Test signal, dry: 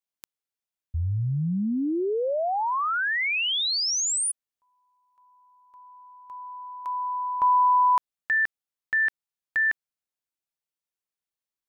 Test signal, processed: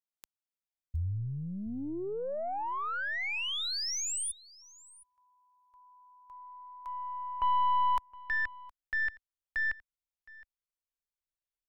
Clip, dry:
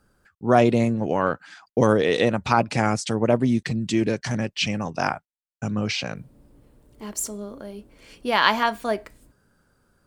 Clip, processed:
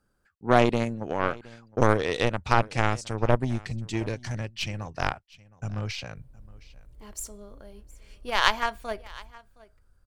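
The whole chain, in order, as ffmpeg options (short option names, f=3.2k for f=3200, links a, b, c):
-af "aeval=exprs='0.841*(cos(1*acos(clip(val(0)/0.841,-1,1)))-cos(1*PI/2))+0.0841*(cos(3*acos(clip(val(0)/0.841,-1,1)))-cos(3*PI/2))+0.0376*(cos(6*acos(clip(val(0)/0.841,-1,1)))-cos(6*PI/2))+0.0422*(cos(7*acos(clip(val(0)/0.841,-1,1)))-cos(7*PI/2))+0.0266*(cos(8*acos(clip(val(0)/0.841,-1,1)))-cos(8*PI/2))':c=same,aecho=1:1:716:0.0841,asubboost=boost=10.5:cutoff=67"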